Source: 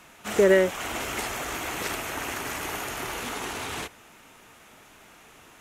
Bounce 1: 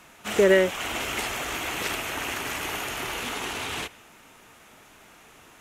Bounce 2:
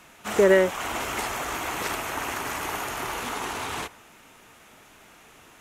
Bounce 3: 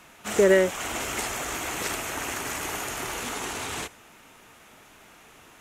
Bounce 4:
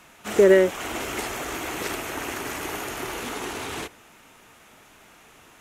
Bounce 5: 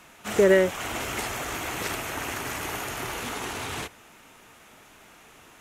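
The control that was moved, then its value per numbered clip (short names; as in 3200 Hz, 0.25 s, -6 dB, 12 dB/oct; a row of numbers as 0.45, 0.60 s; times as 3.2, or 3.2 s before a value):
dynamic EQ, frequency: 2900, 1000, 7500, 350, 110 Hz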